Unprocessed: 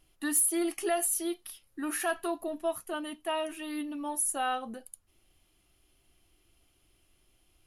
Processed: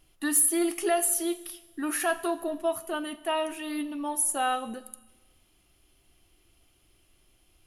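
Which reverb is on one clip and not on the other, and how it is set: Schroeder reverb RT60 1.2 s, combs from 31 ms, DRR 15 dB; trim +3.5 dB

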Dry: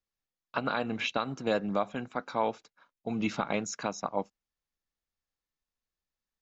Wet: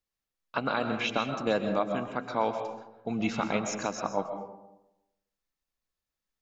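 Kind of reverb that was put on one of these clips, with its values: algorithmic reverb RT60 0.93 s, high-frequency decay 0.4×, pre-delay 90 ms, DRR 6 dB; trim +1 dB

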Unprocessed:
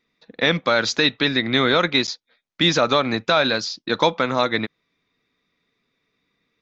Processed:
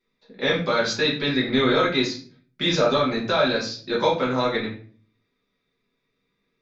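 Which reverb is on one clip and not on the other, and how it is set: simulated room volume 37 m³, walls mixed, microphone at 1.2 m; trim -10.5 dB

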